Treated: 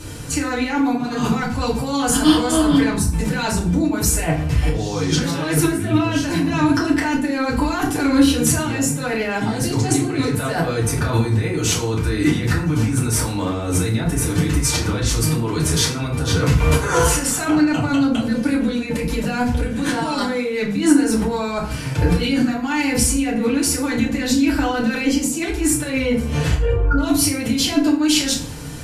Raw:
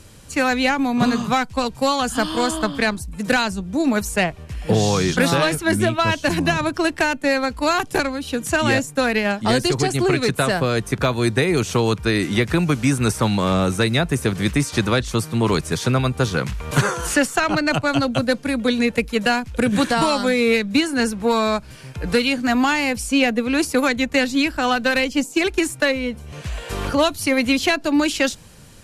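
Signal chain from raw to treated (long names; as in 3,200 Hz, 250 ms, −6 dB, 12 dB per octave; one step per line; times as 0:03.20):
0:26.54–0:26.98: expanding power law on the bin magnitudes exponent 2.5
compressor whose output falls as the input rises −27 dBFS, ratio −1
feedback delay network reverb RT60 0.54 s, low-frequency decay 1.3×, high-frequency decay 0.65×, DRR −6.5 dB
level −1.5 dB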